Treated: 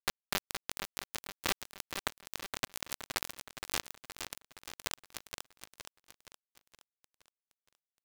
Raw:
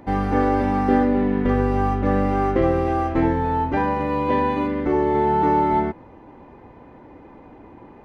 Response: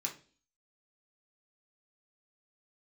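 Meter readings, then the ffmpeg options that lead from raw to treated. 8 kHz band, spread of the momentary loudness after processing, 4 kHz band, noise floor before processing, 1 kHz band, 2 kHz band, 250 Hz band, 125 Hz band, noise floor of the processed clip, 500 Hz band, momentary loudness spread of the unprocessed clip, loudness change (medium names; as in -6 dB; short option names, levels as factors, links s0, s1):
no reading, 16 LU, +5.5 dB, -46 dBFS, -25.0 dB, -9.5 dB, -32.0 dB, -29.5 dB, under -85 dBFS, -28.0 dB, 4 LU, -19.0 dB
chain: -filter_complex "[0:a]highpass=f=940:w=0.5412,highpass=f=940:w=1.3066,acompressor=threshold=0.0178:ratio=16,acrusher=bits=4:mix=0:aa=0.000001,asplit=2[s0][s1];[s1]aecho=0:1:469|938|1407|1876|2345|2814:0.447|0.223|0.112|0.0558|0.0279|0.014[s2];[s0][s2]amix=inputs=2:normalize=0,volume=3.16"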